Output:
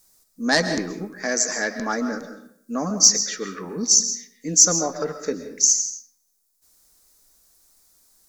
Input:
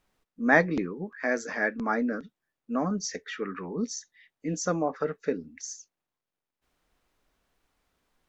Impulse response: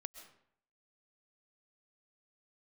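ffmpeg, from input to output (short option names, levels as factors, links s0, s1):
-filter_complex "[0:a]aeval=exprs='0.447*sin(PI/2*1.58*val(0)/0.447)':c=same,aexciter=amount=11.3:drive=4.8:freq=4400[s0];[1:a]atrim=start_sample=2205,asetrate=43659,aresample=44100[s1];[s0][s1]afir=irnorm=-1:irlink=0,volume=0.891"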